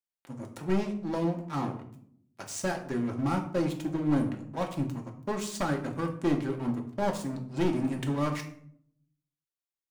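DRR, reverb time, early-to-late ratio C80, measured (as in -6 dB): 2.0 dB, 0.65 s, 13.5 dB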